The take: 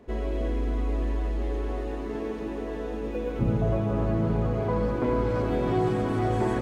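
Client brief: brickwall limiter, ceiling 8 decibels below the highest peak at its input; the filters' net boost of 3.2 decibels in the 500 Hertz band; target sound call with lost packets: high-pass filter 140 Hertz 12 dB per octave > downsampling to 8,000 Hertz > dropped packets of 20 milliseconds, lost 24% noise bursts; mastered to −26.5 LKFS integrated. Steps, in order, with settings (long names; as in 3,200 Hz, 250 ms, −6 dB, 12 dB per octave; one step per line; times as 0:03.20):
parametric band 500 Hz +4 dB
brickwall limiter −20 dBFS
high-pass filter 140 Hz 12 dB per octave
downsampling to 8,000 Hz
dropped packets of 20 ms, lost 24% noise bursts
level +4 dB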